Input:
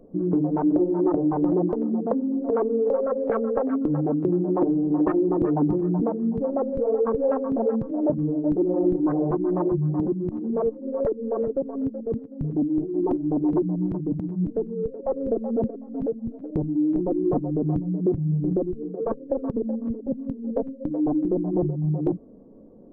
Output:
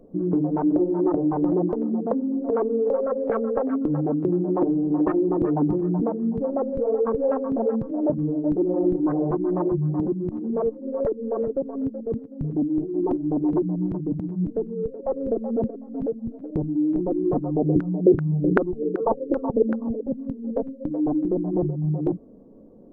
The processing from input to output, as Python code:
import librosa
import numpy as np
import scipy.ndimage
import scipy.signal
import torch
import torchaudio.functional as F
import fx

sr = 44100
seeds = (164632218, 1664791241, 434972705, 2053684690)

y = fx.filter_lfo_lowpass(x, sr, shape='saw_down', hz=2.6, low_hz=330.0, high_hz=1500.0, q=6.4, at=(17.42, 20.03))